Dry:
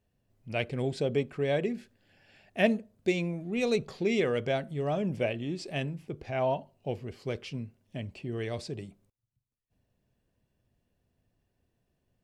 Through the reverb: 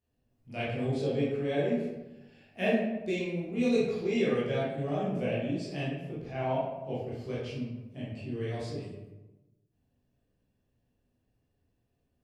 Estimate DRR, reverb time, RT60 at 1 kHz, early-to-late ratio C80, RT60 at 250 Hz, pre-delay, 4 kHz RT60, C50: −8.5 dB, 1.1 s, 1.0 s, 3.0 dB, 1.2 s, 12 ms, 0.65 s, 0.0 dB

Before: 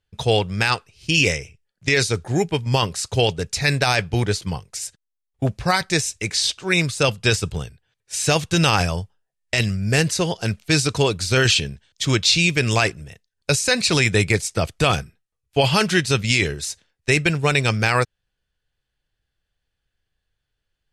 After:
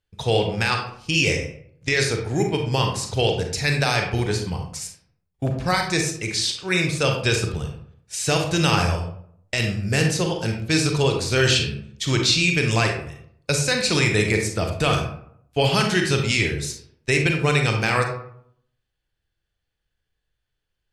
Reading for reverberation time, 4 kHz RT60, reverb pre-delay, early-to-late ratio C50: 0.65 s, 0.35 s, 34 ms, 5.0 dB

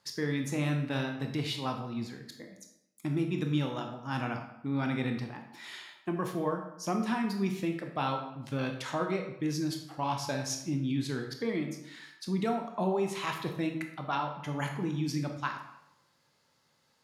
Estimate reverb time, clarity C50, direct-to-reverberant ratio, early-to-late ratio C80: 0.80 s, 6.5 dB, 3.5 dB, 9.5 dB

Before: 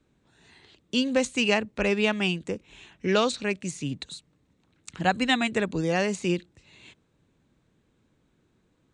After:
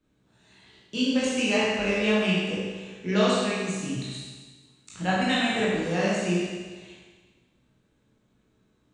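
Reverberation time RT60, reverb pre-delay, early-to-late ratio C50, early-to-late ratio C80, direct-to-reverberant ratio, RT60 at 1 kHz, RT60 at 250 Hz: 1.4 s, 16 ms, −3.0 dB, 0.0 dB, −8.0 dB, 1.4 s, 1.4 s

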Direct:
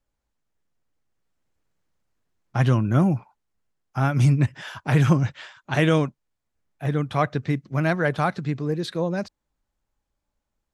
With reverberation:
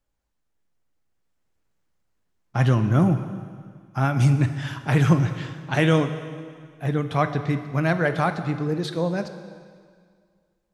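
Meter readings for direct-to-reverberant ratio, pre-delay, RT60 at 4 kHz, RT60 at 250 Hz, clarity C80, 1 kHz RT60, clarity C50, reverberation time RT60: 8.5 dB, 5 ms, 1.9 s, 2.0 s, 11.0 dB, 2.0 s, 10.0 dB, 2.0 s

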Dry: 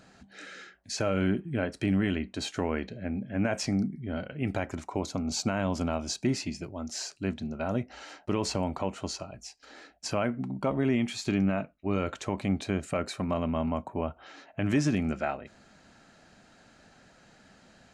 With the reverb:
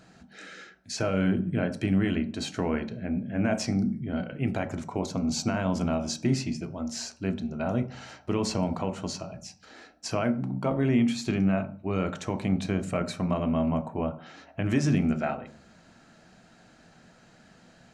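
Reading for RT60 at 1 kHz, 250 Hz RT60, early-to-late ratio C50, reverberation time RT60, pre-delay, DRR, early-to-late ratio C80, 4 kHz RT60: 0.40 s, 0.80 s, 15.0 dB, 0.45 s, 3 ms, 9.0 dB, 19.5 dB, 0.40 s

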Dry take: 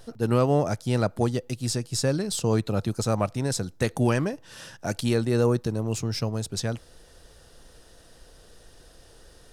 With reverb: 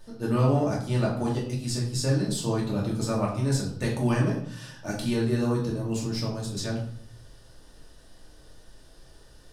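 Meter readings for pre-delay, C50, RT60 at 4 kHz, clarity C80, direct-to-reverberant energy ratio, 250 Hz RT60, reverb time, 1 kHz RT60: 3 ms, 5.0 dB, 0.45 s, 9.0 dB, −4.5 dB, 0.80 s, 0.60 s, 0.60 s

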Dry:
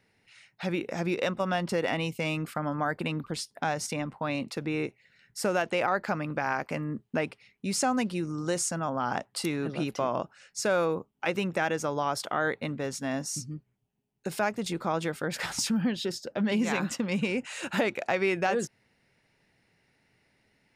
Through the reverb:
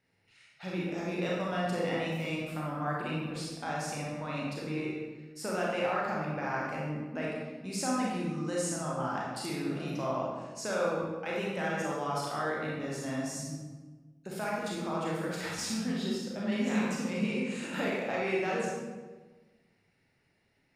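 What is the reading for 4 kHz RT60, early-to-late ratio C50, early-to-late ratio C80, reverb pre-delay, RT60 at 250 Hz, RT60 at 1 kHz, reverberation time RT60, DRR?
0.85 s, −1.5 dB, 2.0 dB, 27 ms, 1.6 s, 1.2 s, 1.3 s, −5.0 dB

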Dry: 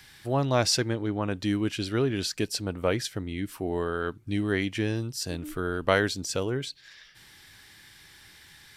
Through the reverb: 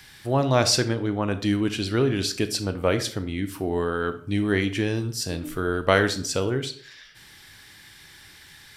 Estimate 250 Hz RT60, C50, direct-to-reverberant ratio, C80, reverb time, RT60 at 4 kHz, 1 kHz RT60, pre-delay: 0.55 s, 13.5 dB, 10.0 dB, 17.0 dB, 0.55 s, 0.35 s, 0.55 s, 25 ms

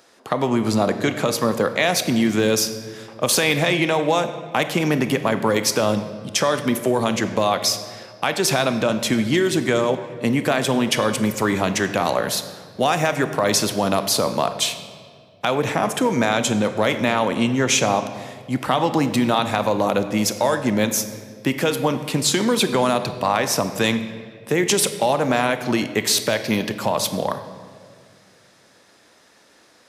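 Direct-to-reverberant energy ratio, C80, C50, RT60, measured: 9.5 dB, 12.0 dB, 11.0 dB, 2.0 s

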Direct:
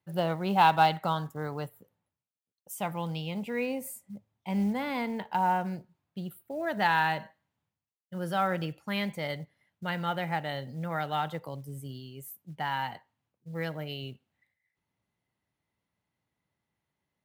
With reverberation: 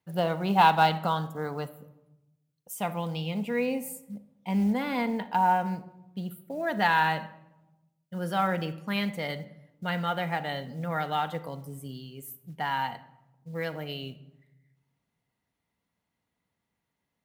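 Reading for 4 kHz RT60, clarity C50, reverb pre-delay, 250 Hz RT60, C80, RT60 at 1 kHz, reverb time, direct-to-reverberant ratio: 0.55 s, 15.5 dB, 4 ms, 1.3 s, 18.0 dB, 0.90 s, 1.0 s, 9.5 dB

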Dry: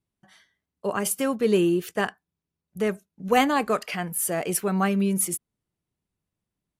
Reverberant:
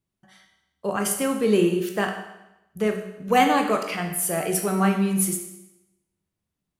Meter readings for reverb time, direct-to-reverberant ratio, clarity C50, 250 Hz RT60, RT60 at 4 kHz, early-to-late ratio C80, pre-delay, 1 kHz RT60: 0.90 s, 3.0 dB, 6.5 dB, 0.90 s, 0.90 s, 9.0 dB, 14 ms, 0.90 s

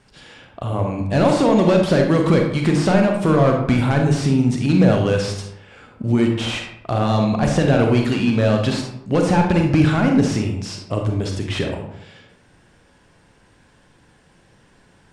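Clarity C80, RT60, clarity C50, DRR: 7.5 dB, 0.75 s, 4.5 dB, 2.0 dB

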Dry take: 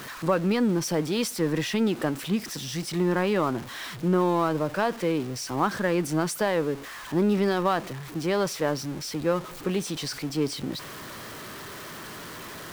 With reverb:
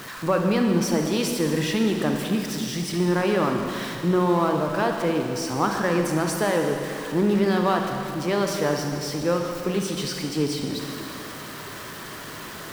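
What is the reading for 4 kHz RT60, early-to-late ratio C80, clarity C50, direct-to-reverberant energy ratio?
2.6 s, 4.5 dB, 3.5 dB, 2.5 dB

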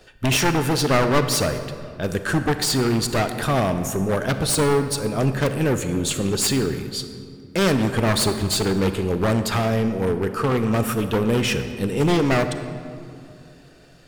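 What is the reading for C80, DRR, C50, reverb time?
10.0 dB, 8.5 dB, 9.0 dB, 2.4 s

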